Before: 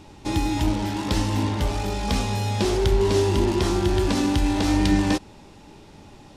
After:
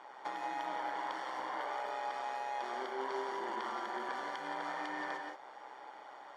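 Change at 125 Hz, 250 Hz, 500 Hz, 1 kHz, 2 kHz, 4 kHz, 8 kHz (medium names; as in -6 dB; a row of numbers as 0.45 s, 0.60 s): under -40 dB, -27.5 dB, -18.0 dB, -6.5 dB, -8.5 dB, -19.0 dB, -25.5 dB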